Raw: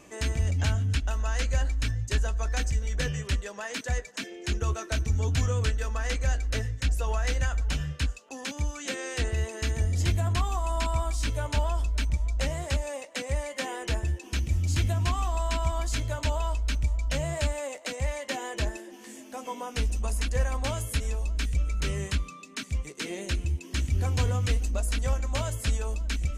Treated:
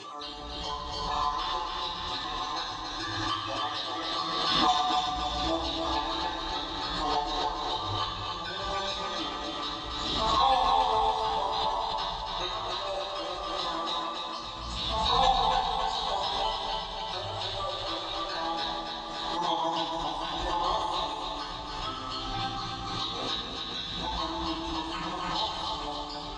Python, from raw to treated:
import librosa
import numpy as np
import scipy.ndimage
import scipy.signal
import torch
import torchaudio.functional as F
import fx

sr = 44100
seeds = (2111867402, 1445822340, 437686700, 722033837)

p1 = fx.spec_dropout(x, sr, seeds[0], share_pct=32)
p2 = fx.high_shelf(p1, sr, hz=3000.0, db=-4.0)
p3 = fx.rider(p2, sr, range_db=4, speed_s=0.5)
p4 = p2 + F.gain(torch.from_numpy(p3), -3.0).numpy()
p5 = fx.double_bandpass(p4, sr, hz=2100.0, octaves=1.7)
p6 = fx.pitch_keep_formants(p5, sr, semitones=-7.0)
p7 = fx.air_absorb(p6, sr, metres=78.0)
p8 = fx.echo_feedback(p7, sr, ms=282, feedback_pct=59, wet_db=-4.5)
p9 = fx.rev_fdn(p8, sr, rt60_s=1.1, lf_ratio=1.2, hf_ratio=0.85, size_ms=55.0, drr_db=-6.5)
p10 = fx.pre_swell(p9, sr, db_per_s=25.0)
y = F.gain(torch.from_numpy(p10), 6.0).numpy()